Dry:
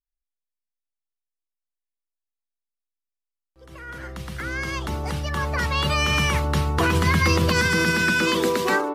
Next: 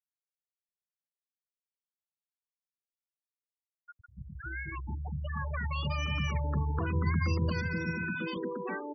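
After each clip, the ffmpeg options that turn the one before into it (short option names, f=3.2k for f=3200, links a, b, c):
-filter_complex "[0:a]afftfilt=real='re*gte(hypot(re,im),0.158)':imag='im*gte(hypot(re,im),0.158)':win_size=1024:overlap=0.75,acrossover=split=220[a][b];[b]acompressor=threshold=-29dB:ratio=4[c];[a][c]amix=inputs=2:normalize=0,volume=-7dB"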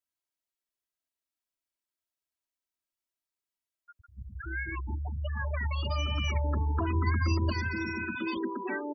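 -af "aecho=1:1:3.1:0.95"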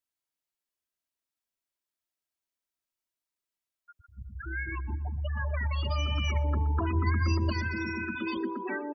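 -filter_complex "[0:a]asplit=2[a][b];[b]adelay=122,lowpass=f=3k:p=1,volume=-18dB,asplit=2[c][d];[d]adelay=122,lowpass=f=3k:p=1,volume=0.53,asplit=2[e][f];[f]adelay=122,lowpass=f=3k:p=1,volume=0.53,asplit=2[g][h];[h]adelay=122,lowpass=f=3k:p=1,volume=0.53[i];[a][c][e][g][i]amix=inputs=5:normalize=0"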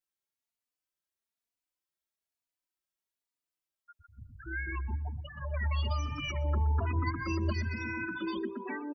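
-filter_complex "[0:a]asplit=2[a][b];[b]adelay=3.4,afreqshift=1.1[c];[a][c]amix=inputs=2:normalize=1"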